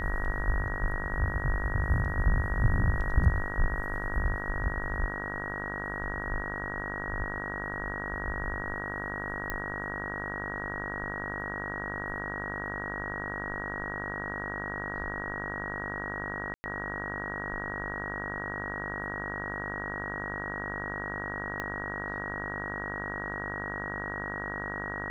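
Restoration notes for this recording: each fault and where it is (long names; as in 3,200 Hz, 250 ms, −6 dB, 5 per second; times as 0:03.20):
mains buzz 50 Hz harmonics 34 −38 dBFS
whistle 1,900 Hz −36 dBFS
0:09.50: click −17 dBFS
0:16.54–0:16.64: drop-out 100 ms
0:21.60: click −19 dBFS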